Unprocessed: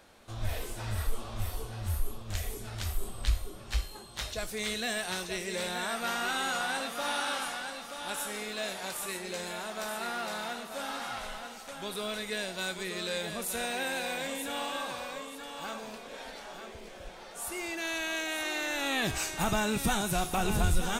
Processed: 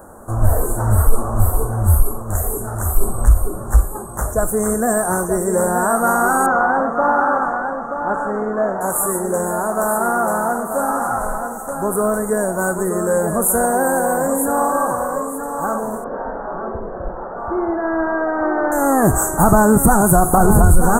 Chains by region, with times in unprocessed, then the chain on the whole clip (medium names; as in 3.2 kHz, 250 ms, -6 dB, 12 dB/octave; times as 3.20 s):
2.02–2.97 s: bass shelf 250 Hz -6 dB + band-stop 4.3 kHz
6.46–8.81 s: low-pass 3.9 kHz 24 dB/octave + hum notches 60/120/180 Hz
16.04–18.72 s: low-pass 2.1 kHz 24 dB/octave + flutter echo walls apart 11.6 m, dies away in 0.49 s
whole clip: inverse Chebyshev band-stop 2.3–4.9 kHz, stop band 50 dB; loudness maximiser +20.5 dB; trim -1 dB